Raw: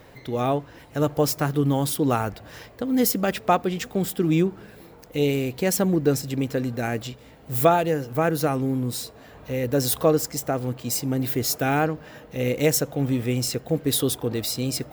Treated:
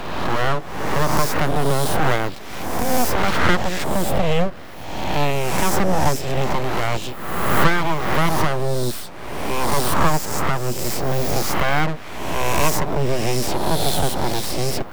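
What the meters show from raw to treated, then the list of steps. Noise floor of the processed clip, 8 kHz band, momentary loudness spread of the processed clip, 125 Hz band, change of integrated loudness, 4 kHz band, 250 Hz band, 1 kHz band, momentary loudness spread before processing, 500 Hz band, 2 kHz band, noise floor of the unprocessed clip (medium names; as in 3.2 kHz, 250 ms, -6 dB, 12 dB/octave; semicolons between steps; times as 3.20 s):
-32 dBFS, +1.5 dB, 8 LU, +2.5 dB, +2.5 dB, +5.0 dB, -1.0 dB, +7.0 dB, 9 LU, +1.0 dB, +9.5 dB, -48 dBFS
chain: reverse spectral sustain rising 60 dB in 1.10 s; treble shelf 4.5 kHz -9 dB; full-wave rectifier; three bands compressed up and down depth 40%; trim +4.5 dB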